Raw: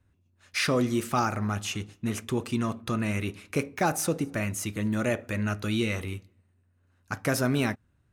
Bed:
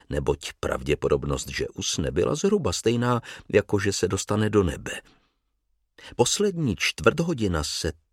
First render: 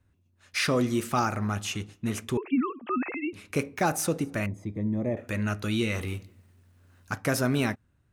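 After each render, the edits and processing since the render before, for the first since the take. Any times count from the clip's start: 2.37–3.33 s: formants replaced by sine waves; 4.46–5.17 s: boxcar filter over 31 samples; 5.95–7.15 s: companding laws mixed up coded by mu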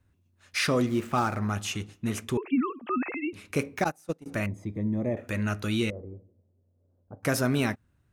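0.86–1.39 s: median filter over 9 samples; 3.84–4.26 s: gate -24 dBFS, range -27 dB; 5.90–7.23 s: four-pole ladder low-pass 630 Hz, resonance 55%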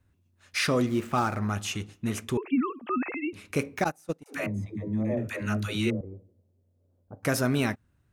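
4.23–6.01 s: phase dispersion lows, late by 133 ms, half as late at 360 Hz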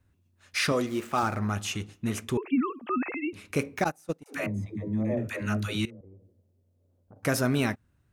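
0.72–1.23 s: tone controls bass -9 dB, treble +2 dB; 5.85–7.16 s: compression 3:1, threshold -50 dBFS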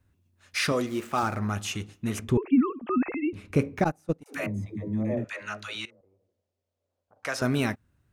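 2.19–4.21 s: tilt EQ -2.5 dB/octave; 5.24–7.42 s: three-band isolator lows -19 dB, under 570 Hz, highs -18 dB, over 7.7 kHz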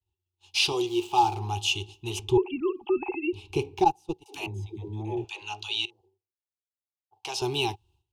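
expander -56 dBFS; FFT filter 100 Hz 0 dB, 250 Hz -21 dB, 370 Hz +9 dB, 580 Hz -24 dB, 830 Hz +13 dB, 1.3 kHz -17 dB, 1.9 kHz -23 dB, 2.8 kHz +11 dB, 8.5 kHz -1 dB, 13 kHz -3 dB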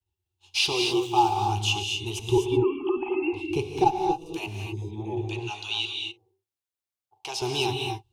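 gated-style reverb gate 280 ms rising, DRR 2.5 dB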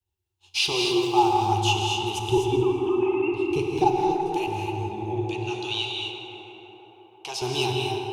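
tape echo 164 ms, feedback 86%, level -7.5 dB, low-pass 2.8 kHz; plate-style reverb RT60 3 s, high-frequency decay 0.55×, DRR 6.5 dB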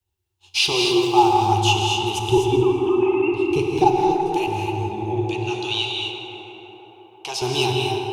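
trim +4.5 dB

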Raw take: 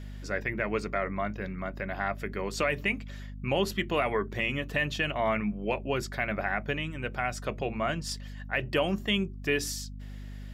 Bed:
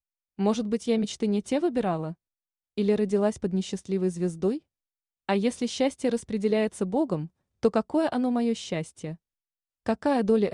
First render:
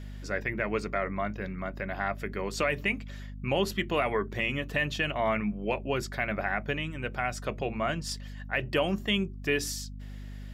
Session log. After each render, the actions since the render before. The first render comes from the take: no audible change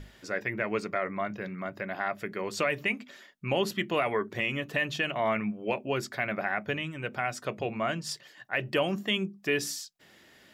hum notches 50/100/150/200/250 Hz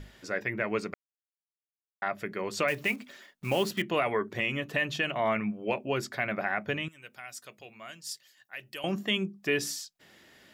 0.94–2.02 s: mute; 2.68–3.84 s: block-companded coder 5-bit; 6.88–8.84 s: pre-emphasis filter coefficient 0.9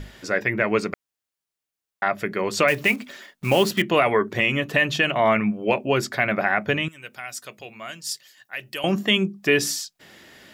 trim +9 dB

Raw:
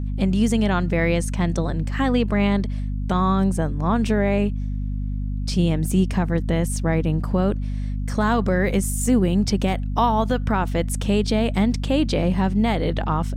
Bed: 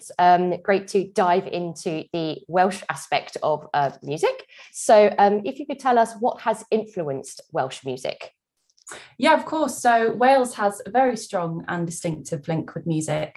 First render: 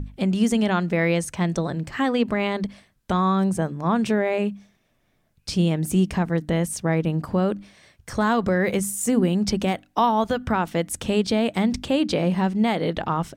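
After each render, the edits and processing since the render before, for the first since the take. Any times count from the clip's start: hum notches 50/100/150/200/250/300 Hz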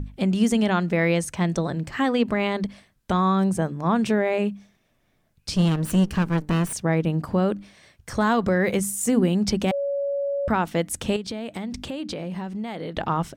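5.56–6.73 s: comb filter that takes the minimum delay 0.67 ms; 9.71–10.48 s: bleep 562 Hz -22.5 dBFS; 11.16–12.97 s: compression 4:1, threshold -29 dBFS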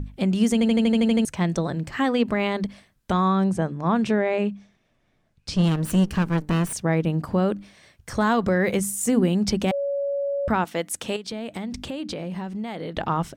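0.53 s: stutter in place 0.08 s, 9 plays; 3.28–5.64 s: distance through air 51 m; 10.64–11.32 s: high-pass 410 Hz 6 dB/octave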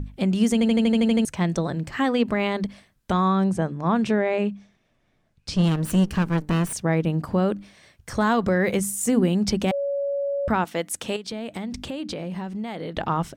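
no audible change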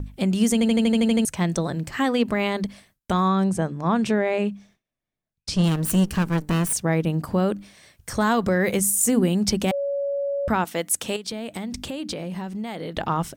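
gate with hold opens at -47 dBFS; treble shelf 7.3 kHz +11.5 dB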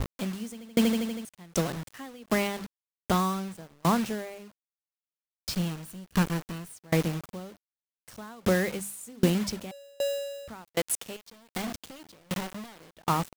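bit crusher 5-bit; sawtooth tremolo in dB decaying 1.3 Hz, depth 31 dB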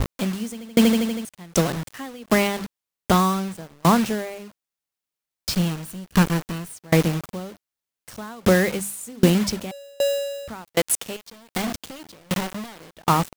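trim +7.5 dB; peak limiter -3 dBFS, peak gain reduction 1 dB

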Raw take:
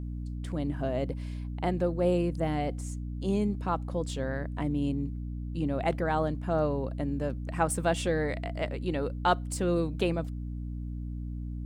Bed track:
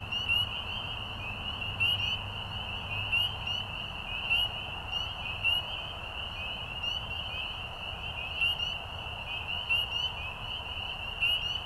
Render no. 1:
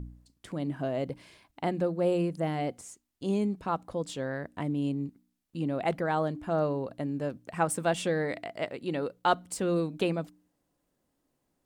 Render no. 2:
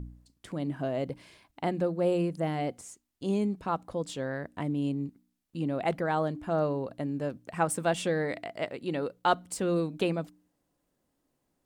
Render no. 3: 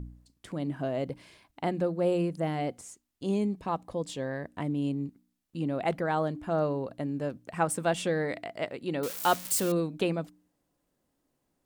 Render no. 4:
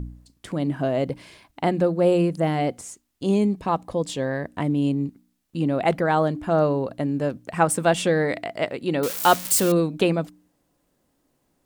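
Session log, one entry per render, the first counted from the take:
de-hum 60 Hz, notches 5
no audible change
3.35–4.47 s: band-stop 1.4 kHz, Q 5.3; 9.03–9.72 s: zero-crossing glitches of -23.5 dBFS
trim +8 dB

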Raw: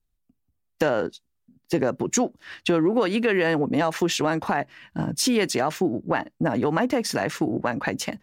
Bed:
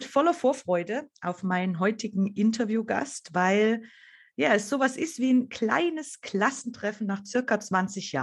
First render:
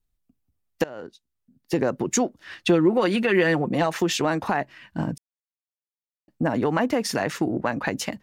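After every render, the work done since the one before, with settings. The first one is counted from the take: 0.84–1.81 s: fade in, from -21 dB; 2.60–3.86 s: comb 5.6 ms, depth 51%; 5.18–6.28 s: mute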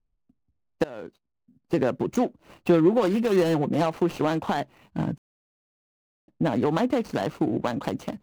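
median filter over 25 samples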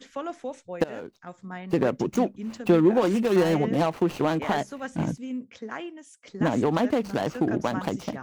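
add bed -11 dB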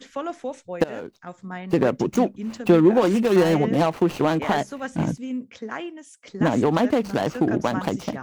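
trim +3.5 dB

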